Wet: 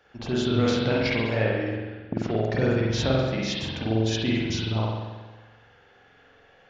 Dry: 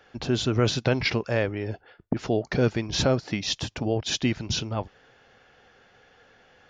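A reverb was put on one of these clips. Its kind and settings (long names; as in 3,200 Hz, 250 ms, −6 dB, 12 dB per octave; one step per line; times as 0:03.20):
spring reverb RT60 1.3 s, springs 45 ms, chirp 25 ms, DRR −5.5 dB
level −5.5 dB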